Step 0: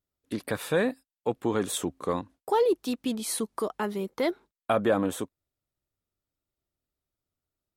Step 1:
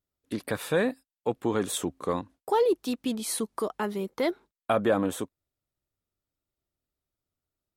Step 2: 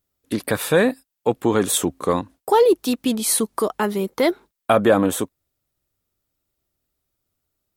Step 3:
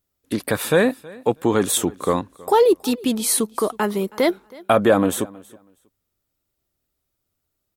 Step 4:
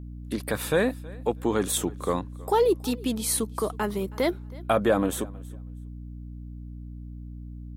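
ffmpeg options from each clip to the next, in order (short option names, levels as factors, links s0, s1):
-af anull
-af "highshelf=f=9100:g=7,volume=2.66"
-af "aecho=1:1:321|642:0.075|0.0142"
-af "aeval=exprs='val(0)+0.0282*(sin(2*PI*60*n/s)+sin(2*PI*2*60*n/s)/2+sin(2*PI*3*60*n/s)/3+sin(2*PI*4*60*n/s)/4+sin(2*PI*5*60*n/s)/5)':c=same,volume=0.473"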